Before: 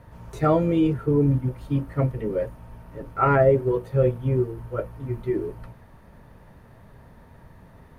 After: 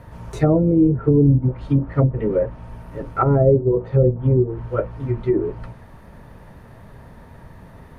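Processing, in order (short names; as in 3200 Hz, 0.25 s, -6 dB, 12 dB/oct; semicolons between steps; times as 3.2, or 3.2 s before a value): treble ducked by the level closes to 440 Hz, closed at -17.5 dBFS; gain +6.5 dB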